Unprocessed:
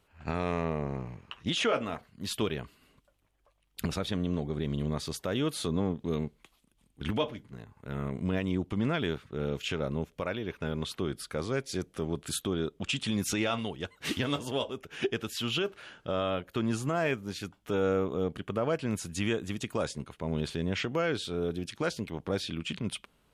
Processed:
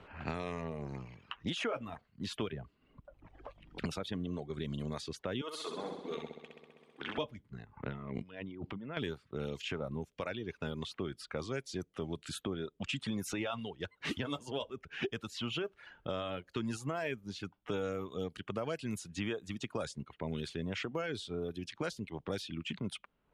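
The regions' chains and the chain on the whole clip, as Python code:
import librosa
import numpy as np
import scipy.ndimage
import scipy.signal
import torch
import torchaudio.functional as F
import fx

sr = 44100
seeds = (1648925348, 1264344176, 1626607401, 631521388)

y = fx.chain(x, sr, fx.tilt_shelf(db=6.0, hz=1200.0),
    fx.band_squash(depth_pct=40), at=(2.52, 3.8))
y = fx.chain(y, sr, fx.highpass(hz=550.0, slope=12),
    fx.room_flutter(wall_m=11.1, rt60_s=1.4), at=(5.41, 7.18))
y = fx.chain(y, sr, fx.lowpass(hz=2800.0, slope=12),
    fx.over_compress(threshold_db=-39.0, ratio=-1.0), at=(7.73, 8.97))
y = fx.dereverb_blind(y, sr, rt60_s=0.98)
y = fx.env_lowpass(y, sr, base_hz=2400.0, full_db=-27.5)
y = fx.band_squash(y, sr, depth_pct=70)
y = F.gain(torch.from_numpy(y), -5.5).numpy()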